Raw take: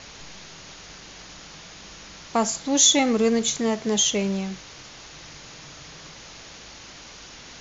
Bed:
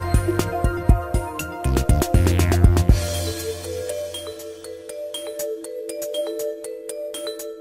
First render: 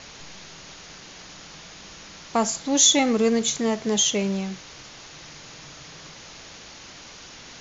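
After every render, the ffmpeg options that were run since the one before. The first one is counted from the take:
ffmpeg -i in.wav -af "bandreject=frequency=50:width_type=h:width=4,bandreject=frequency=100:width_type=h:width=4" out.wav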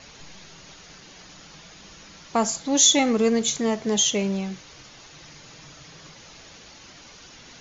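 ffmpeg -i in.wav -af "afftdn=noise_reduction=6:noise_floor=-44" out.wav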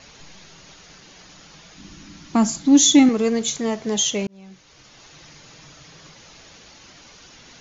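ffmpeg -i in.wav -filter_complex "[0:a]asettb=1/sr,asplit=3[link_01][link_02][link_03];[link_01]atrim=end=1.774[link_04];[link_02]atrim=start=1.77:end=3.09,asetpts=PTS-STARTPTS,afade=type=in:duration=0.004:curve=qsin,afade=type=out:start_time=1.316:duration=0.004:curve=qsin,lowshelf=frequency=370:width_type=q:width=3:gain=6.5[link_05];[link_03]atrim=start=3.086[link_06];[link_04][link_05]acrossfade=duration=0.004:curve1=hsin:curve2=qsin[link_07];[link_07][link_06]acrossfade=duration=0.004:curve1=qsin:curve2=hsin,asplit=2[link_08][link_09];[link_08]atrim=end=4.27,asetpts=PTS-STARTPTS,afade=type=out:start_time=4.266:duration=0.004:curve=hsin[link_10];[link_09]atrim=start=4.27,asetpts=PTS-STARTPTS,afade=type=in:duration=0.81[link_11];[link_10][link_11]concat=n=2:v=0:a=1" out.wav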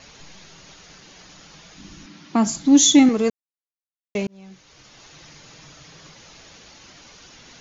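ffmpeg -i in.wav -filter_complex "[0:a]asettb=1/sr,asplit=3[link_01][link_02][link_03];[link_01]atrim=end=2.064[link_04];[link_02]atrim=start=2.06:end=2.47,asetpts=PTS-STARTPTS,afade=type=in:duration=0.004:curve=qsin,afade=type=out:start_time=0.406:duration=0.004:curve=qsin,highpass=170,lowpass=5000[link_05];[link_03]atrim=start=2.466[link_06];[link_04][link_05]acrossfade=duration=0.004:curve1=hsin:curve2=qsin[link_07];[link_07][link_06]acrossfade=duration=0.004:curve1=qsin:curve2=hsin,asplit=3[link_08][link_09][link_10];[link_08]atrim=end=3.3,asetpts=PTS-STARTPTS,afade=type=out:start_time=3.296:duration=0.004:curve=hsin[link_11];[link_09]atrim=start=3.3:end=4.15,asetpts=PTS-STARTPTS,volume=0[link_12];[link_10]atrim=start=4.15,asetpts=PTS-STARTPTS,afade=type=in:duration=0.004:curve=hsin[link_13];[link_11][link_12][link_13]concat=n=3:v=0:a=1" out.wav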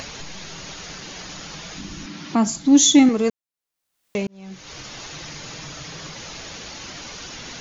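ffmpeg -i in.wav -af "acompressor=mode=upward:threshold=-25dB:ratio=2.5" out.wav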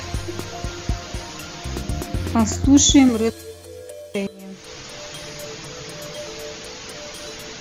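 ffmpeg -i in.wav -i bed.wav -filter_complex "[1:a]volume=-9.5dB[link_01];[0:a][link_01]amix=inputs=2:normalize=0" out.wav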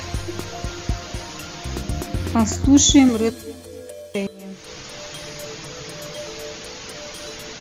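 ffmpeg -i in.wav -filter_complex "[0:a]asplit=2[link_01][link_02];[link_02]adelay=258,lowpass=frequency=2000:poles=1,volume=-23dB,asplit=2[link_03][link_04];[link_04]adelay=258,lowpass=frequency=2000:poles=1,volume=0.47,asplit=2[link_05][link_06];[link_06]adelay=258,lowpass=frequency=2000:poles=1,volume=0.47[link_07];[link_01][link_03][link_05][link_07]amix=inputs=4:normalize=0" out.wav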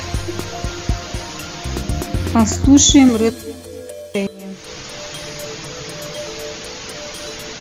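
ffmpeg -i in.wav -af "volume=4.5dB,alimiter=limit=-1dB:level=0:latency=1" out.wav

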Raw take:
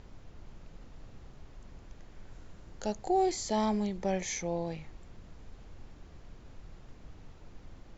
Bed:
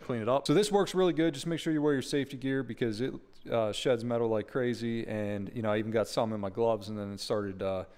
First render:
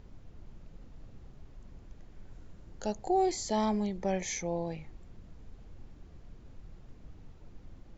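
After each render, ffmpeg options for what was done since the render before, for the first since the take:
ffmpeg -i in.wav -af "afftdn=noise_reduction=6:noise_floor=-53" out.wav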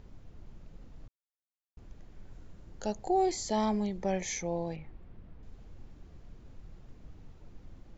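ffmpeg -i in.wav -filter_complex "[0:a]asettb=1/sr,asplit=3[link_01][link_02][link_03];[link_01]atrim=end=4.764[link_04];[link_02]atrim=start=4.76:end=5.43,asetpts=PTS-STARTPTS,afade=type=in:duration=0.004:curve=qsin,afade=type=out:start_time=0.666:duration=0.004:curve=qsin,lowpass=2800[link_05];[link_03]atrim=start=5.426[link_06];[link_04][link_05]acrossfade=duration=0.004:curve1=hsin:curve2=qsin[link_07];[link_07][link_06]acrossfade=duration=0.004:curve1=qsin:curve2=hsin,asplit=3[link_08][link_09][link_10];[link_08]atrim=end=1.08,asetpts=PTS-STARTPTS,afade=type=out:start_time=1.076:duration=0.004:curve=hsin[link_11];[link_09]atrim=start=1.08:end=1.77,asetpts=PTS-STARTPTS,volume=0[link_12];[link_10]atrim=start=1.77,asetpts=PTS-STARTPTS,afade=type=in:duration=0.004:curve=hsin[link_13];[link_11][link_12][link_13]concat=n=3:v=0:a=1" out.wav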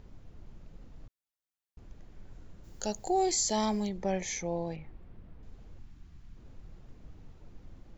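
ffmpeg -i in.wav -filter_complex "[0:a]asplit=3[link_01][link_02][link_03];[link_01]afade=type=out:start_time=2.63:duration=0.02[link_04];[link_02]aemphasis=mode=production:type=75fm,afade=type=in:start_time=2.63:duration=0.02,afade=type=out:start_time=3.88:duration=0.02[link_05];[link_03]afade=type=in:start_time=3.88:duration=0.02[link_06];[link_04][link_05][link_06]amix=inputs=3:normalize=0,asettb=1/sr,asplit=3[link_07][link_08][link_09];[link_07]atrim=end=5.794[link_10];[link_08]atrim=start=5.79:end=6.37,asetpts=PTS-STARTPTS,afade=type=in:duration=0.004:curve=qsin,afade=type=out:start_time=0.576:duration=0.004:curve=qsin,equalizer=frequency=510:width=1.3:gain=-15[link_11];[link_09]atrim=start=6.366[link_12];[link_10][link_11]acrossfade=duration=0.004:curve1=hsin:curve2=qsin[link_13];[link_13][link_12]acrossfade=duration=0.004:curve1=qsin:curve2=hsin" out.wav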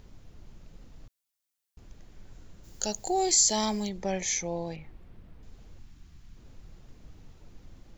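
ffmpeg -i in.wav -af "highshelf=frequency=2800:gain=9.5" out.wav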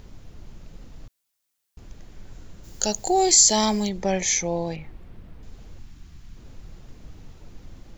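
ffmpeg -i in.wav -af "volume=7dB" out.wav

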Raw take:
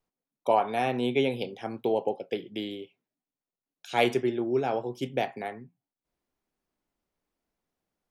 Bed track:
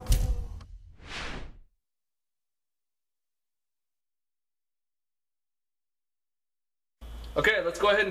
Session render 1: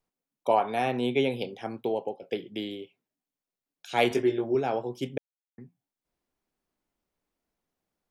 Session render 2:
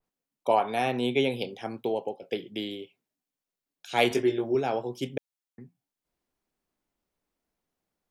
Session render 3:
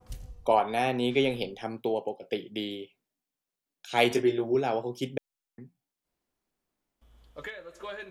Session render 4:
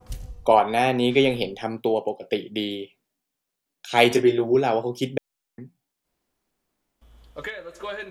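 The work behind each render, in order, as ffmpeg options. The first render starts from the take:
ffmpeg -i in.wav -filter_complex "[0:a]asettb=1/sr,asplit=3[link_01][link_02][link_03];[link_01]atrim=end=4.094[link_04];[link_02]atrim=start=4.09:end=4.55,asetpts=PTS-STARTPTS,afade=type=in:duration=0.004:curve=qsin,afade=type=out:start_time=0.456:duration=0.004:curve=qsin,asplit=2[link_05][link_06];[link_06]adelay=19,volume=-3dB[link_07];[link_05][link_07]amix=inputs=2:normalize=0,atrim=end_sample=20286[link_08];[link_03]atrim=start=4.546[link_09];[link_04][link_08]acrossfade=duration=0.004:curve1=hsin:curve2=qsin[link_10];[link_10][link_09]acrossfade=duration=0.004:curve1=qsin:curve2=hsin,asplit=4[link_11][link_12][link_13][link_14];[link_11]atrim=end=2.22,asetpts=PTS-STARTPTS,afade=type=out:start_time=1.66:duration=0.56:silence=0.446684[link_15];[link_12]atrim=start=2.22:end=5.18,asetpts=PTS-STARTPTS,afade=type=in:duration=0.004:curve=hsin:silence=0.446684,afade=type=out:start_time=2.956:duration=0.004:curve=hsin[link_16];[link_13]atrim=start=5.18:end=5.58,asetpts=PTS-STARTPTS,volume=0[link_17];[link_14]atrim=start=5.58,asetpts=PTS-STARTPTS,afade=type=in:duration=0.004:curve=hsin[link_18];[link_15][link_16][link_17][link_18]concat=n=4:v=0:a=1" out.wav
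ffmpeg -i in.wav -af "adynamicequalizer=threshold=0.00631:dfrequency=2600:dqfactor=0.7:tfrequency=2600:tqfactor=0.7:attack=5:release=100:ratio=0.375:range=2:mode=boostabove:tftype=highshelf" out.wav
ffmpeg -i in.wav -i bed.wav -filter_complex "[1:a]volume=-16.5dB[link_01];[0:a][link_01]amix=inputs=2:normalize=0" out.wav
ffmpeg -i in.wav -af "volume=6.5dB" out.wav

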